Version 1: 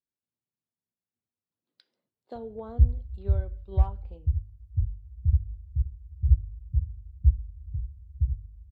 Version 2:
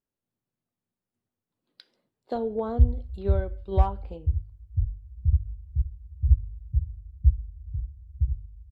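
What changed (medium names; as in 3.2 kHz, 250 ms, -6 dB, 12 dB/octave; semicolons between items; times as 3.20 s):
speech +10.0 dB; master: remove high-pass 41 Hz 12 dB/octave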